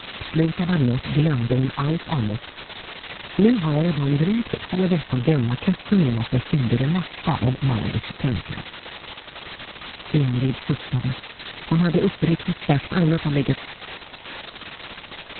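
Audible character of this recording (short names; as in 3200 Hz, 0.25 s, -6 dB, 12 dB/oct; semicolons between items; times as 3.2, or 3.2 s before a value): a buzz of ramps at a fixed pitch in blocks of 8 samples; phasing stages 12, 2.7 Hz, lowest notch 470–1400 Hz; a quantiser's noise floor 6-bit, dither triangular; Opus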